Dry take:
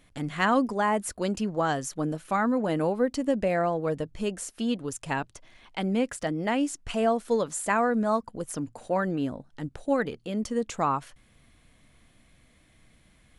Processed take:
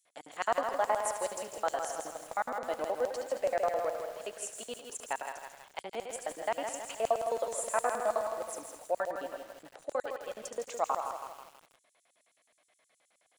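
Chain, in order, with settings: thinning echo 72 ms, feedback 67%, high-pass 350 Hz, level -8 dB; LFO high-pass square 9.5 Hz 620–7000 Hz; bit-crushed delay 162 ms, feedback 55%, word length 7-bit, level -6 dB; trim -8 dB

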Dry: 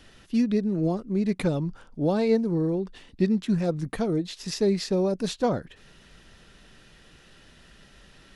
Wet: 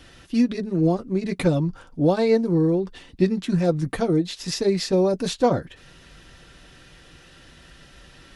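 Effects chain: comb of notches 210 Hz; trim +6 dB

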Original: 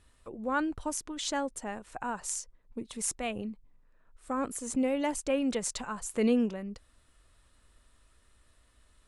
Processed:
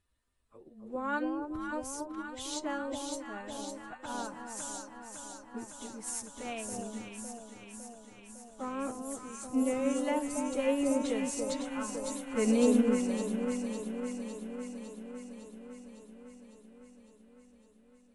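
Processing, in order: plain phase-vocoder stretch 2×; echo whose repeats swap between lows and highs 278 ms, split 960 Hz, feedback 87%, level -3 dB; upward expansion 1.5:1, over -50 dBFS

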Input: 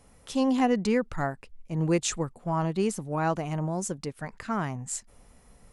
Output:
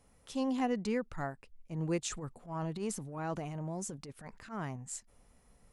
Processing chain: 2.08–4.76 s: transient shaper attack -12 dB, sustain +5 dB; trim -8.5 dB

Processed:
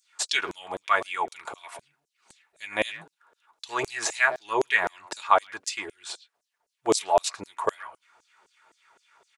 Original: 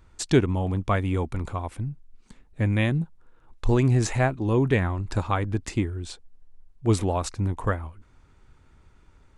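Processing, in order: comb of notches 260 Hz; speakerphone echo 110 ms, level -17 dB; LFO high-pass saw down 3.9 Hz 470–7300 Hz; trim +4.5 dB

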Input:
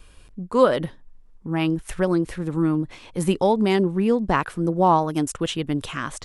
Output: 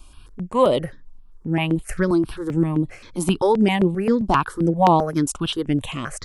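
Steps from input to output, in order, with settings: stepped phaser 7.6 Hz 480–5700 Hz; trim +4.5 dB

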